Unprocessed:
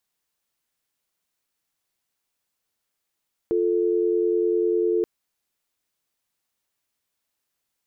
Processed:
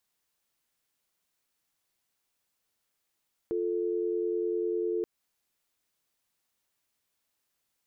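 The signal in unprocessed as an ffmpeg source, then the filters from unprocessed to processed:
-f lavfi -i "aevalsrc='0.0841*(sin(2*PI*350*t)+sin(2*PI*440*t))':duration=1.53:sample_rate=44100"
-af "alimiter=limit=-24dB:level=0:latency=1:release=161"

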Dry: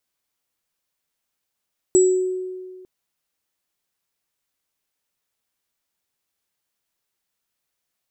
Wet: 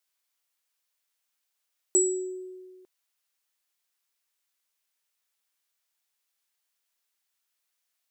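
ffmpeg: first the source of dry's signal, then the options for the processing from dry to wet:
-f lavfi -i "aevalsrc='0.316*pow(10,-3*t/1.77)*sin(2*PI*370*t)+0.158*pow(10,-3*t/0.54)*sin(2*PI*7780*t)':duration=0.9:sample_rate=44100"
-af "highpass=frequency=1200:poles=1"

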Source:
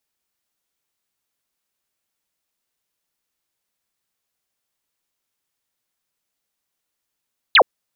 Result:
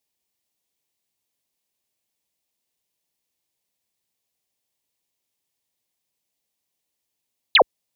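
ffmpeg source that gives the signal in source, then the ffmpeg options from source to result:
-f lavfi -i "aevalsrc='0.447*clip(t/0.002,0,1)*clip((0.07-t)/0.002,0,1)*sin(2*PI*4500*0.07/log(410/4500)*(exp(log(410/4500)*t/0.07)-1))':duration=0.07:sample_rate=44100"
-af "highpass=45,equalizer=frequency=1400:width=2.5:gain=-12.5"

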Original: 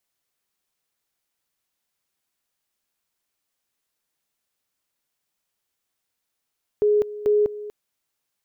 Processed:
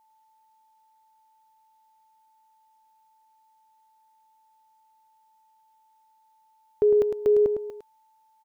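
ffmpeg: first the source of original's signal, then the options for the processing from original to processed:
-f lavfi -i "aevalsrc='pow(10,(-15-16*gte(mod(t,0.44),0.2))/20)*sin(2*PI*418*t)':duration=0.88:sample_rate=44100"
-filter_complex "[0:a]aeval=exprs='val(0)+0.000891*sin(2*PI*880*n/s)':channel_layout=same,asplit=2[link_01][link_02];[link_02]aecho=0:1:106:0.447[link_03];[link_01][link_03]amix=inputs=2:normalize=0"

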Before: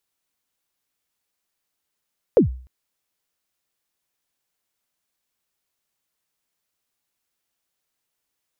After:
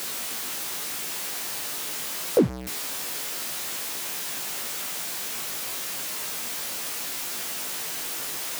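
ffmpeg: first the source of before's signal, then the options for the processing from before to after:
-f lavfi -i "aevalsrc='0.447*pow(10,-3*t/0.45)*sin(2*PI*(560*0.117/log(63/560)*(exp(log(63/560)*min(t,0.117)/0.117)-1)+63*max(t-0.117,0)))':duration=0.3:sample_rate=44100"
-af "aeval=exprs='val(0)+0.5*0.0794*sgn(val(0))':channel_layout=same,highpass=150,flanger=delay=16:depth=2.7:speed=0.8"

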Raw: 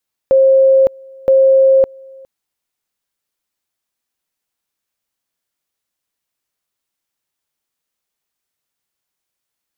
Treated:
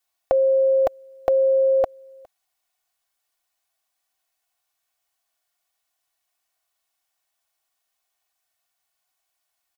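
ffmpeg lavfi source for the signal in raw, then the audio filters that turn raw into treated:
-f lavfi -i "aevalsrc='pow(10,(-6-28*gte(mod(t,0.97),0.56))/20)*sin(2*PI*534*t)':duration=1.94:sample_rate=44100"
-af "lowshelf=frequency=510:width_type=q:width=3:gain=-6.5,aecho=1:1:2.7:0.72"

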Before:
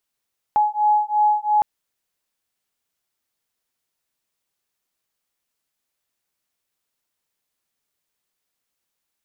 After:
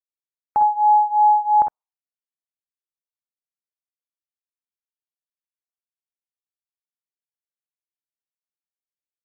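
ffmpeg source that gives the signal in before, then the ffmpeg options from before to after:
-f lavfi -i "aevalsrc='0.119*(sin(2*PI*841*t)+sin(2*PI*843.9*t))':duration=1.06:sample_rate=44100"
-filter_complex "[0:a]afftdn=noise_reduction=34:noise_floor=-44,asplit=2[link_01][link_02];[link_02]aecho=0:1:51|62:0.355|0.447[link_03];[link_01][link_03]amix=inputs=2:normalize=0"

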